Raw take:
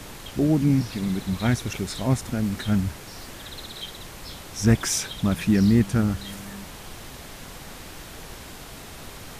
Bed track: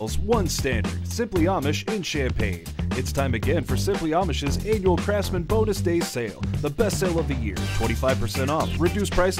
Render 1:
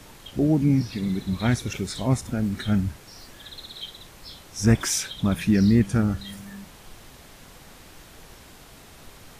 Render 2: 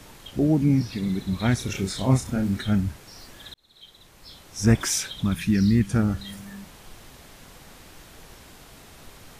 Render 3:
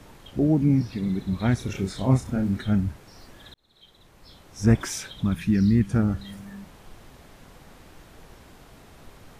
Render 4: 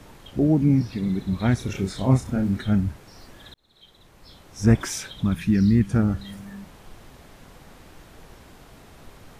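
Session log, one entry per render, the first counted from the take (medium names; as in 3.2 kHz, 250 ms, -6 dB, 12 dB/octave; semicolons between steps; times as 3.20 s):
noise print and reduce 7 dB
1.56–2.57 s: doubling 31 ms -4 dB; 3.54–4.67 s: fade in; 5.23–5.90 s: peaking EQ 590 Hz -11 dB 1.3 oct
treble shelf 2.2 kHz -8.5 dB
trim +1.5 dB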